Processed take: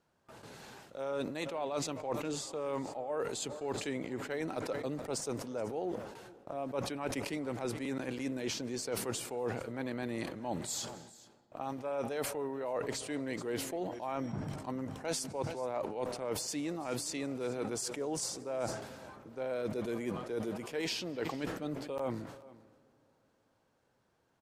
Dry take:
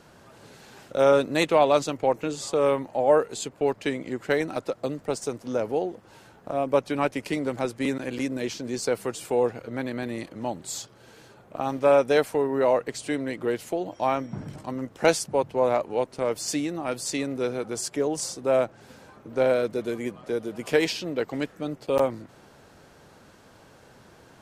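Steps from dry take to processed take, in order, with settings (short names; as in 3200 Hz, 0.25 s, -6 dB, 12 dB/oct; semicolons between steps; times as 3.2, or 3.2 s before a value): gate with hold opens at -40 dBFS; bell 910 Hz +2.5 dB; reverse; compressor 12:1, threshold -31 dBFS, peak gain reduction 19 dB; reverse; echo 0.426 s -20 dB; on a send at -23 dB: reverb RT60 3.5 s, pre-delay 0.115 s; on the sum: sustainer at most 59 dB/s; gain -2.5 dB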